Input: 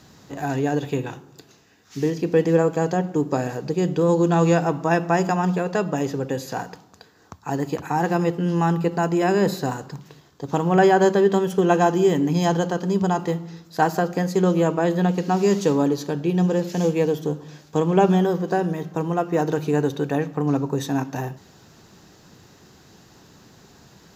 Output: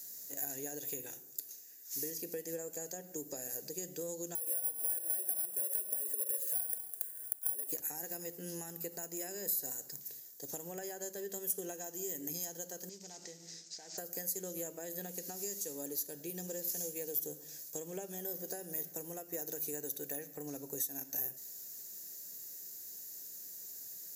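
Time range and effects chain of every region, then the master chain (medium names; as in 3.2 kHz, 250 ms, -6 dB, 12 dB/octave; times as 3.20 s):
4.35–7.72 s: compression 5:1, threshold -35 dBFS + cabinet simulation 350–3700 Hz, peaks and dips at 370 Hz +9 dB, 520 Hz +7 dB, 790 Hz +9 dB, 1.5 kHz +7 dB, 2.9 kHz +6 dB + careless resampling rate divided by 4×, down filtered, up hold
12.89–13.98 s: CVSD coder 32 kbps + treble shelf 3.7 kHz +9.5 dB + compression 5:1, threshold -32 dBFS
whole clip: differentiator; compression 6:1, threshold -46 dBFS; FFT filter 580 Hz 0 dB, 1.1 kHz -21 dB, 1.8 kHz -8 dB, 3.1 kHz -17 dB, 11 kHz +10 dB; trim +8.5 dB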